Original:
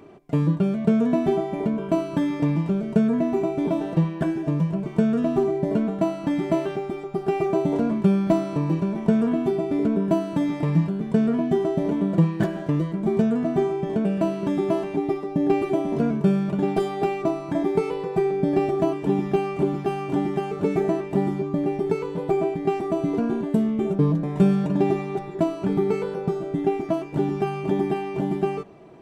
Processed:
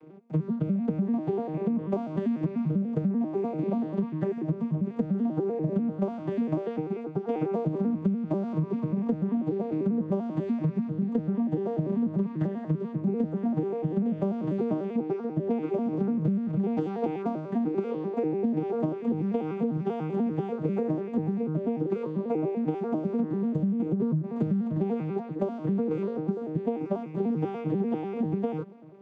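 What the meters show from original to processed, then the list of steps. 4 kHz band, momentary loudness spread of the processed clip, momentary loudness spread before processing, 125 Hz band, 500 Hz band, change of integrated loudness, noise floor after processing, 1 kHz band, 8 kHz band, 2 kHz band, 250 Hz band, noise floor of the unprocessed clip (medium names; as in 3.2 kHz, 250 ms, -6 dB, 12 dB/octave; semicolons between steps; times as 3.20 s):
under -10 dB, 3 LU, 5 LU, -5.0 dB, -7.0 dB, -5.5 dB, -38 dBFS, -8.5 dB, no reading, under -10 dB, -4.5 dB, -34 dBFS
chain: vocoder on a broken chord major triad, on D#3, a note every 98 ms; compression 12:1, threshold -23 dBFS, peak gain reduction 15 dB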